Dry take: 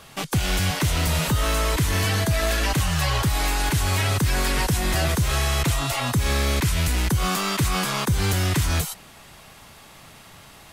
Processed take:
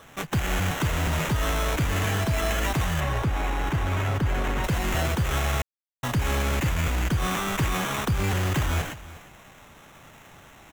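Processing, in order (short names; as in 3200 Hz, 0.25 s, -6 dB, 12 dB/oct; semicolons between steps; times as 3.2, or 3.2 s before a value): sample-rate reducer 4700 Hz, jitter 0%; 3–4.64 high shelf 3300 Hz -11.5 dB; echo 0.355 s -18 dB; 5.62–6.03 mute; gain -3 dB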